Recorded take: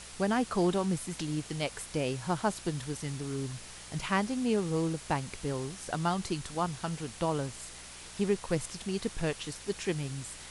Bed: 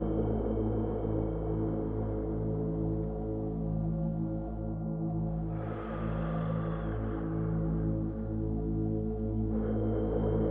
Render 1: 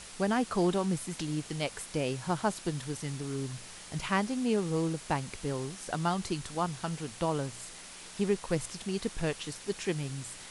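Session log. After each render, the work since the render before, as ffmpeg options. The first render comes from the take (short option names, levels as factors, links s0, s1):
-af "bandreject=f=60:t=h:w=4,bandreject=f=120:t=h:w=4"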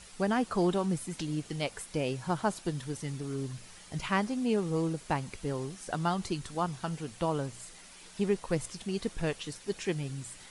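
-af "afftdn=nr=7:nf=-48"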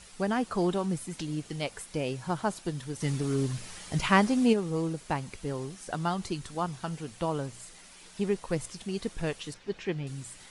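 -filter_complex "[0:a]asplit=3[s0][s1][s2];[s0]afade=t=out:st=3:d=0.02[s3];[s1]acontrast=82,afade=t=in:st=3:d=0.02,afade=t=out:st=4.52:d=0.02[s4];[s2]afade=t=in:st=4.52:d=0.02[s5];[s3][s4][s5]amix=inputs=3:normalize=0,asettb=1/sr,asplit=3[s6][s7][s8];[s6]atrim=end=9.544[s9];[s7]atrim=start=9.54:end=10.07,asetpts=PTS-STARTPTS,afade=t=in:d=0.004:c=qsin,afade=t=out:st=0.526:d=0.004:c=qsin,lowpass=3600[s10];[s8]atrim=start=10.066[s11];[s9][s10]acrossfade=d=0.004:c1=hsin:c2=qsin[s12];[s12][s11]acrossfade=d=0.004:c1=qsin:c2=hsin"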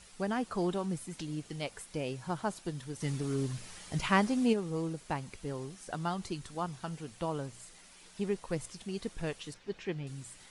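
-af "volume=0.596"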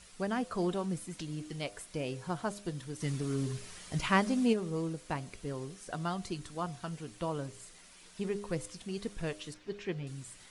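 -af "bandreject=f=840:w=12,bandreject=f=101.9:t=h:w=4,bandreject=f=203.8:t=h:w=4,bandreject=f=305.7:t=h:w=4,bandreject=f=407.6:t=h:w=4,bandreject=f=509.5:t=h:w=4,bandreject=f=611.4:t=h:w=4,bandreject=f=713.3:t=h:w=4"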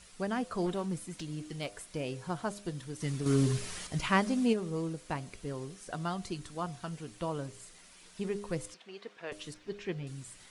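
-filter_complex "[0:a]asettb=1/sr,asplit=3[s0][s1][s2];[s0]atrim=end=0.664[s3];[s1]atrim=start=0.66:end=2,asetpts=PTS-STARTPTS,afade=t=in:d=0.004:c=qsin,afade=t=out:st=1.336:d=0.004:c=qsin,aeval=exprs='clip(val(0),-1,0.0251)':c=same[s4];[s2]atrim=start=1.996[s5];[s3][s4]acrossfade=d=0.004:c1=hsin:c2=qsin[s6];[s6][s5]acrossfade=d=0.004:c1=qsin:c2=hsin,asettb=1/sr,asplit=3[s7][s8][s9];[s7]atrim=end=8.744[s10];[s8]atrim=start=8.74:end=9.32,asetpts=PTS-STARTPTS,afade=t=in:d=0.004:c=qsin,afade=t=out:st=0.576:d=0.004:c=qsin,highpass=530,lowpass=3100[s11];[s9]atrim=start=9.316[s12];[s10][s11]acrossfade=d=0.004:c1=hsin:c2=qsin[s13];[s13][s12]acrossfade=d=0.004:c1=qsin:c2=hsin,asplit=3[s14][s15][s16];[s14]atrim=end=3.262[s17];[s15]atrim=start=3.258:end=3.872,asetpts=PTS-STARTPTS,volume=2.24[s18];[s16]atrim=start=3.868[s19];[s17][s18]acrossfade=d=0.004:c1=hsin:c2=hsin[s20];[s20][s19]acrossfade=d=0.004:c1=hsin:c2=hsin"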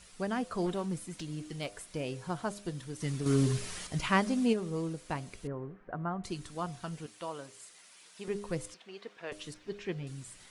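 -filter_complex "[0:a]asettb=1/sr,asplit=3[s0][s1][s2];[s0]atrim=end=5.474[s3];[s1]atrim=start=5.47:end=6.24,asetpts=PTS-STARTPTS,afade=t=in:d=0.004:c=qsin,afade=t=out:st=0.766:d=0.004:c=qsin,lowpass=f=1700:w=0.5412,lowpass=f=1700:w=1.3066[s4];[s2]atrim=start=6.236[s5];[s3][s4]acrossfade=d=0.004:c1=hsin:c2=qsin[s6];[s6][s5]acrossfade=d=0.004:c1=qsin:c2=hsin,asettb=1/sr,asplit=3[s7][s8][s9];[s7]atrim=end=7.064[s10];[s8]atrim=start=7.06:end=8.28,asetpts=PTS-STARTPTS,afade=t=in:d=0.004:c=qsin,afade=t=out:st=1.216:d=0.004:c=qsin,highpass=f=680:p=1[s11];[s9]atrim=start=8.276[s12];[s10][s11]acrossfade=d=0.004:c1=hsin:c2=qsin[s13];[s13][s12]acrossfade=d=0.004:c1=qsin:c2=hsin"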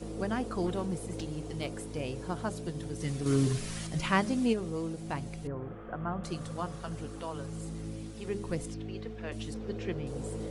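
-filter_complex "[1:a]volume=0.376[s0];[0:a][s0]amix=inputs=2:normalize=0"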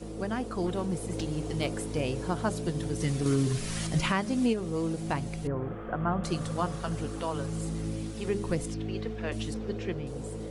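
-af "dynaudnorm=f=120:g=17:m=2,alimiter=limit=0.141:level=0:latency=1:release=429"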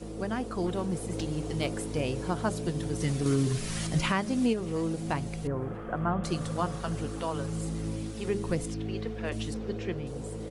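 -af "aecho=1:1:638:0.0631"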